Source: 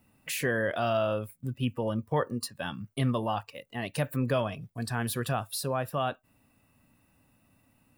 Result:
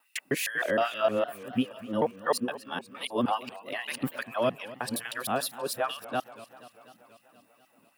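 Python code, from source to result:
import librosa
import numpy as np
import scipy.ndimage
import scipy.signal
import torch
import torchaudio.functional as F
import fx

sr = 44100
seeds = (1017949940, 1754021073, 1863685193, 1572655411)

y = fx.local_reverse(x, sr, ms=155.0)
y = fx.filter_lfo_highpass(y, sr, shape='sine', hz=2.4, low_hz=200.0, high_hz=2900.0, q=1.6)
y = fx.echo_warbled(y, sr, ms=242, feedback_pct=68, rate_hz=2.8, cents=184, wet_db=-17.5)
y = y * 10.0 ** (1.5 / 20.0)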